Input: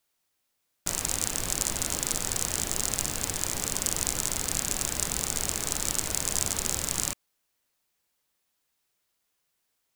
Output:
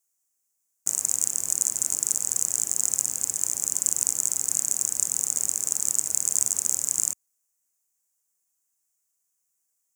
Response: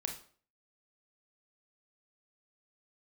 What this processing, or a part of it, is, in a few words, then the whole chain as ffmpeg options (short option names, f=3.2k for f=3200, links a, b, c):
budget condenser microphone: -af "highpass=110,highshelf=f=5.2k:t=q:w=3:g=11,volume=-11dB"